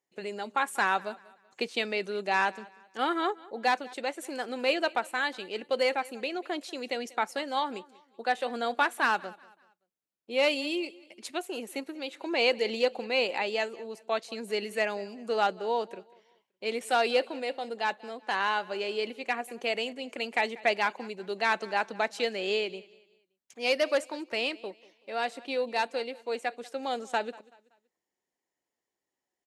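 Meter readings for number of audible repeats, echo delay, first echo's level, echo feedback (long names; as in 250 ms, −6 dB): 2, 190 ms, −22.0 dB, 36%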